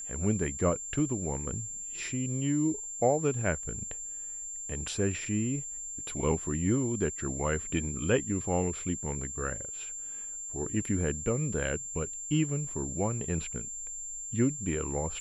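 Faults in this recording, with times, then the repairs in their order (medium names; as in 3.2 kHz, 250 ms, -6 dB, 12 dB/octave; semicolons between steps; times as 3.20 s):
whine 7.3 kHz -37 dBFS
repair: band-stop 7.3 kHz, Q 30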